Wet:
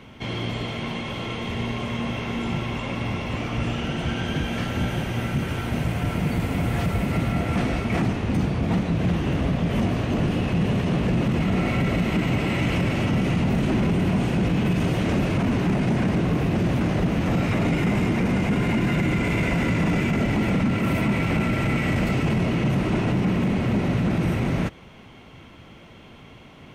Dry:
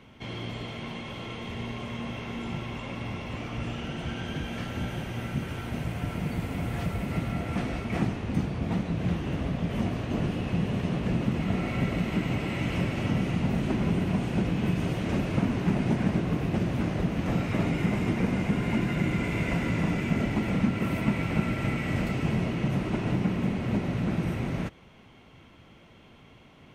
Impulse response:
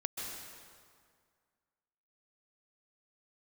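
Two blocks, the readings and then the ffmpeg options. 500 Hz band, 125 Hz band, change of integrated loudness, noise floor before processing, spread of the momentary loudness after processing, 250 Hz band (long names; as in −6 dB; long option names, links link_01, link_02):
+6.5 dB, +5.5 dB, +5.5 dB, −53 dBFS, 6 LU, +5.5 dB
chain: -af "alimiter=limit=-22dB:level=0:latency=1:release=10,volume=7.5dB"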